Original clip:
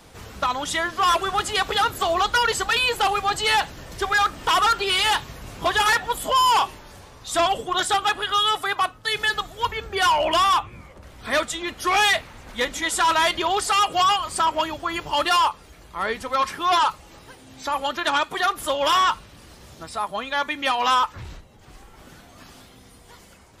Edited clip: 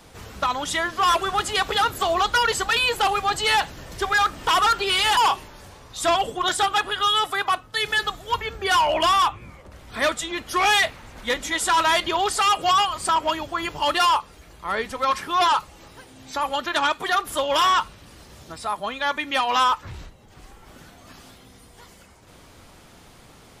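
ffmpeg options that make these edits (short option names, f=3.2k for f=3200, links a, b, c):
-filter_complex "[0:a]asplit=2[a][b];[a]atrim=end=5.172[c];[b]atrim=start=6.478[d];[c][d]acrossfade=d=0.004:c1=hsin:c2=hsin"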